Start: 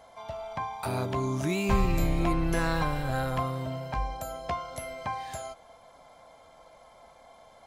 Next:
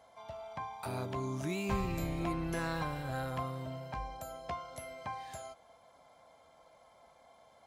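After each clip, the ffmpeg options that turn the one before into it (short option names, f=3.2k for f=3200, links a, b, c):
-af "highpass=58,volume=-7.5dB"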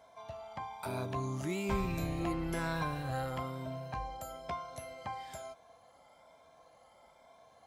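-af "afftfilt=real='re*pow(10,6/40*sin(2*PI*(1.6*log(max(b,1)*sr/1024/100)/log(2)-(1.1)*(pts-256)/sr)))':imag='im*pow(10,6/40*sin(2*PI*(1.6*log(max(b,1)*sr/1024/100)/log(2)-(1.1)*(pts-256)/sr)))':win_size=1024:overlap=0.75"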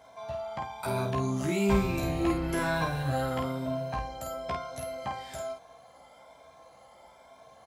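-af "aecho=1:1:15|50:0.631|0.631,volume=4.5dB"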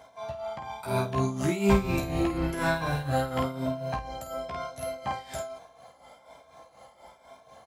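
-af "tremolo=f=4.1:d=0.68,volume=4.5dB"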